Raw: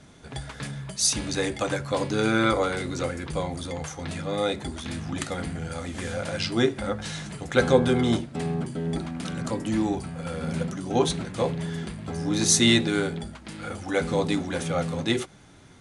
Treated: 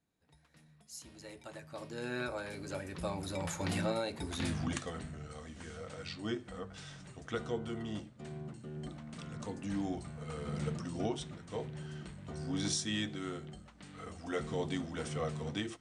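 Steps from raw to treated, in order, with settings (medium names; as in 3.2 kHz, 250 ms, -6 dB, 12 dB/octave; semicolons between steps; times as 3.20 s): Doppler pass-by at 4.51 s, 33 m/s, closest 5.6 m; recorder AGC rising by 5.3 dB/s; trim -3.5 dB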